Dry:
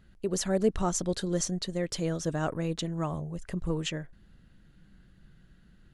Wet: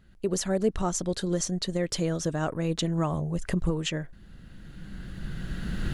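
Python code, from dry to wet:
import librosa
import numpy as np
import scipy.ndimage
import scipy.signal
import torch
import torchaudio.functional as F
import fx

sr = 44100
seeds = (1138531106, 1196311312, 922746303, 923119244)

y = fx.recorder_agc(x, sr, target_db=-17.5, rise_db_per_s=13.0, max_gain_db=30)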